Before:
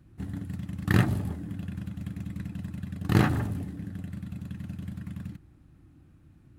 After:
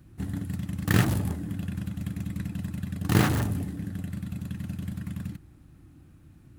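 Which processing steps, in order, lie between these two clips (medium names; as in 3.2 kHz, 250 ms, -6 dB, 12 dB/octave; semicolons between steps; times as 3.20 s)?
treble shelf 5.2 kHz +7 dB; in parallel at -7 dB: integer overflow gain 22 dB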